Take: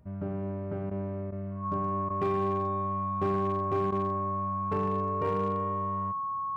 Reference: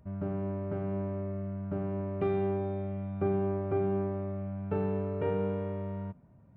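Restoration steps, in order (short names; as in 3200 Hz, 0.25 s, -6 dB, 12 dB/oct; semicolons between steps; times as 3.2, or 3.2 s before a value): clip repair -22 dBFS; notch 1100 Hz, Q 30; interpolate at 0.9/1.31/2.09/3.91, 11 ms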